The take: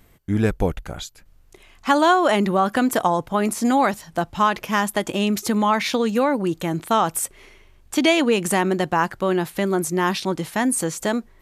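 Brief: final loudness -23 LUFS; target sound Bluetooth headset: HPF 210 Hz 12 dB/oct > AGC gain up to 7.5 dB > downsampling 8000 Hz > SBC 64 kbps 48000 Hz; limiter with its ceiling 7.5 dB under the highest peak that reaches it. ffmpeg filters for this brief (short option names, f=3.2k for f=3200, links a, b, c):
-af "alimiter=limit=-12.5dB:level=0:latency=1,highpass=210,dynaudnorm=m=7.5dB,aresample=8000,aresample=44100,volume=1.5dB" -ar 48000 -c:a sbc -b:a 64k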